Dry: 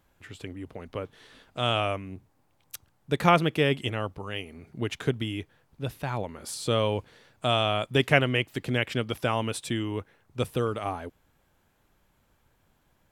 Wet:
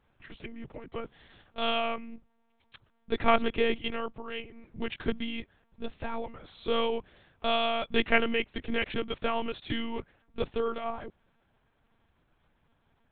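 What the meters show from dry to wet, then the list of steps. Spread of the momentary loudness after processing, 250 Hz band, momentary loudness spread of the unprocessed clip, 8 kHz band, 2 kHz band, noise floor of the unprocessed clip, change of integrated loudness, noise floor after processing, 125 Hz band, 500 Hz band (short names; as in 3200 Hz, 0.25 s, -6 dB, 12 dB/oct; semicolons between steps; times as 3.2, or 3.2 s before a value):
18 LU, -3.5 dB, 20 LU, under -35 dB, -2.5 dB, -68 dBFS, -3.5 dB, -71 dBFS, -16.5 dB, -2.5 dB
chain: monotone LPC vocoder at 8 kHz 230 Hz; gain -2.5 dB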